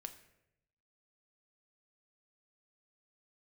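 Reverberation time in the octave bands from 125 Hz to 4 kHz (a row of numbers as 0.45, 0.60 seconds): 1.2, 0.95, 0.95, 0.75, 0.80, 0.55 seconds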